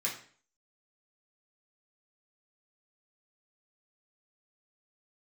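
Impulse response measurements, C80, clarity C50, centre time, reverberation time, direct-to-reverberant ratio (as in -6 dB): 12.0 dB, 7.5 dB, 25 ms, 0.45 s, -5.0 dB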